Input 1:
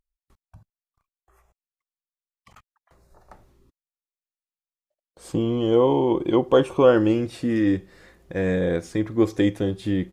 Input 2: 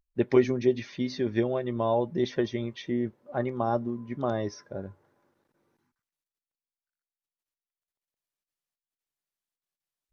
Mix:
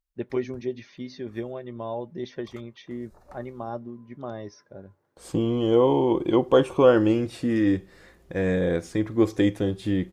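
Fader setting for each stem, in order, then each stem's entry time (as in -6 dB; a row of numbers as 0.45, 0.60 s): -1.0, -6.5 dB; 0.00, 0.00 s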